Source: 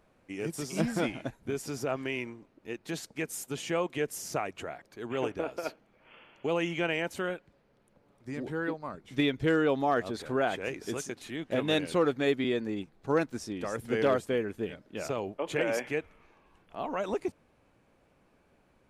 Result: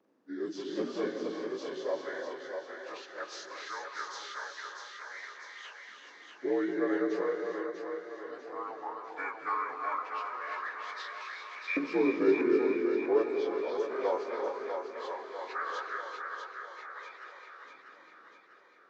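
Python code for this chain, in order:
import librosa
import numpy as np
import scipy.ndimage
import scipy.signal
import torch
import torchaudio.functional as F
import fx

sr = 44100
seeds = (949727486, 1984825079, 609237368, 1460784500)

p1 = fx.partial_stretch(x, sr, pct=84)
p2 = fx.filter_lfo_highpass(p1, sr, shape='saw_up', hz=0.17, low_hz=270.0, high_hz=2600.0, q=3.2)
p3 = p2 + fx.echo_split(p2, sr, split_hz=380.0, low_ms=241, high_ms=645, feedback_pct=52, wet_db=-5.5, dry=0)
p4 = fx.rev_gated(p3, sr, seeds[0], gate_ms=430, shape='rising', drr_db=4.0)
y = F.gain(torch.from_numpy(p4), -6.0).numpy()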